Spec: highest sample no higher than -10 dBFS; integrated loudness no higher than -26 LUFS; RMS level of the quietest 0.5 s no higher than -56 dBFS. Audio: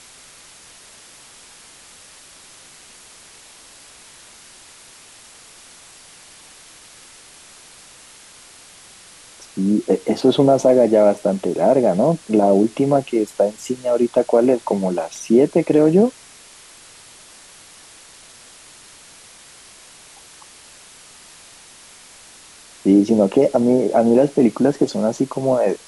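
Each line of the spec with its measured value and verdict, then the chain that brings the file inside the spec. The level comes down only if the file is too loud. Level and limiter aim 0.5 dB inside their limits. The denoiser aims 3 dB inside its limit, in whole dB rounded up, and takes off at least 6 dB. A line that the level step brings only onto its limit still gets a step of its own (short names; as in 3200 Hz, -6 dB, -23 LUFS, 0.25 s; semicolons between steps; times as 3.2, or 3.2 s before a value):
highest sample -4.0 dBFS: fail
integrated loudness -17.0 LUFS: fail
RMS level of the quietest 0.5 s -45 dBFS: fail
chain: denoiser 6 dB, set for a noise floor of -45 dBFS; gain -9.5 dB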